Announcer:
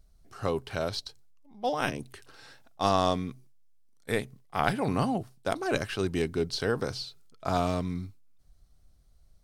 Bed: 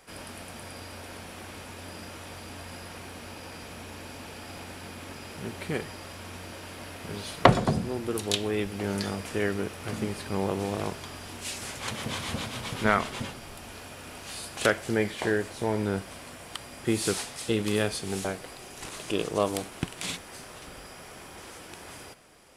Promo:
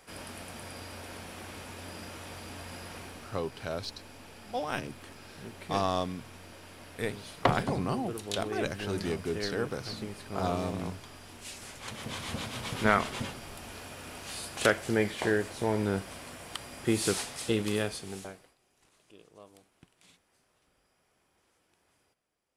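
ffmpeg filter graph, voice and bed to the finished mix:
-filter_complex "[0:a]adelay=2900,volume=-4.5dB[a];[1:a]volume=5.5dB,afade=t=out:st=2.99:d=0.39:silence=0.473151,afade=t=in:st=11.82:d=0.97:silence=0.446684,afade=t=out:st=17.45:d=1.1:silence=0.0501187[b];[a][b]amix=inputs=2:normalize=0"

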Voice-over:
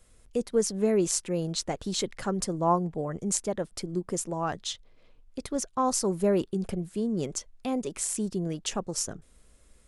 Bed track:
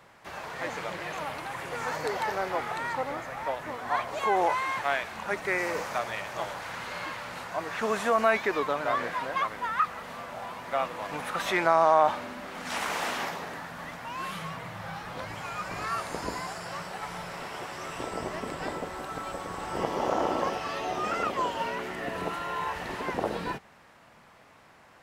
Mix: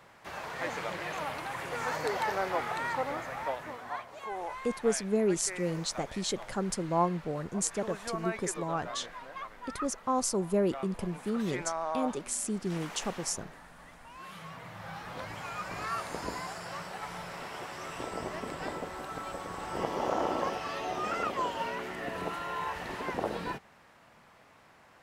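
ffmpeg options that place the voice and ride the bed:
-filter_complex "[0:a]adelay=4300,volume=-3dB[a];[1:a]volume=9dB,afade=t=out:st=3.35:d=0.71:silence=0.251189,afade=t=in:st=14.14:d=0.97:silence=0.316228[b];[a][b]amix=inputs=2:normalize=0"

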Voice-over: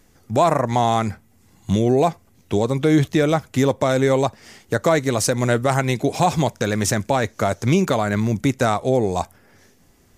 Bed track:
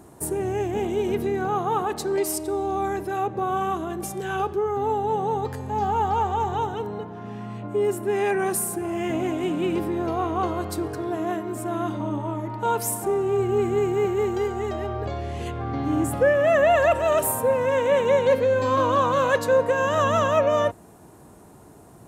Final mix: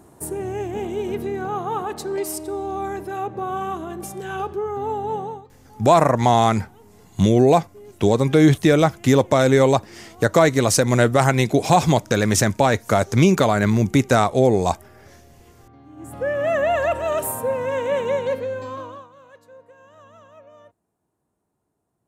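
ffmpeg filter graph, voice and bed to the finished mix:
-filter_complex "[0:a]adelay=5500,volume=2.5dB[a];[1:a]volume=17.5dB,afade=t=out:st=5.16:d=0.29:silence=0.105925,afade=t=in:st=15.96:d=0.48:silence=0.112202,afade=t=out:st=18.03:d=1.05:silence=0.0530884[b];[a][b]amix=inputs=2:normalize=0"

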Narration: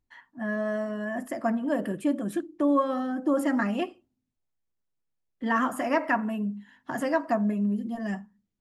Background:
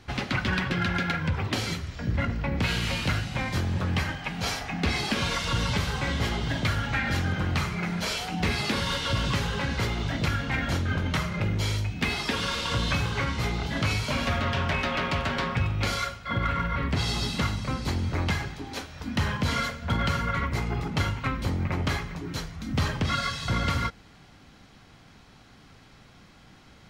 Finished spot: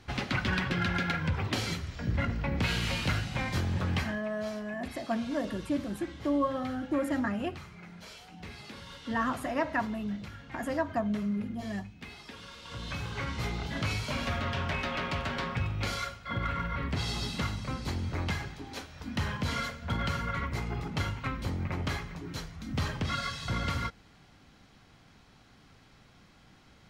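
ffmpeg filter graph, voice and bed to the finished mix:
-filter_complex "[0:a]adelay=3650,volume=-5dB[a];[1:a]volume=10dB,afade=t=out:st=3.94:d=0.32:silence=0.16788,afade=t=in:st=12.61:d=0.8:silence=0.223872[b];[a][b]amix=inputs=2:normalize=0"

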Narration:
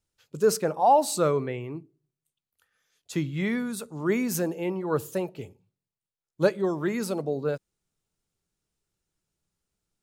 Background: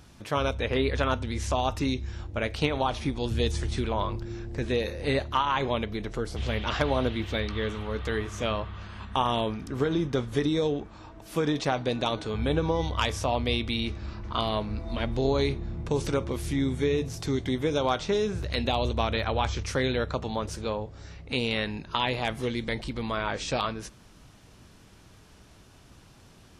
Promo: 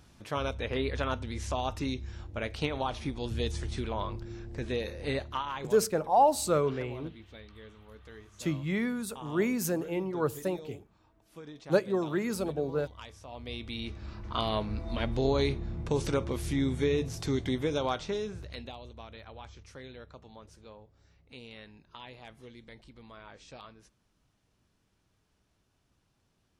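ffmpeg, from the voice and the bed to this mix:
-filter_complex "[0:a]adelay=5300,volume=-3dB[a];[1:a]volume=12.5dB,afade=t=out:st=5.1:d=0.79:silence=0.188365,afade=t=in:st=13.27:d=1.28:silence=0.125893,afade=t=out:st=17.44:d=1.35:silence=0.125893[b];[a][b]amix=inputs=2:normalize=0"

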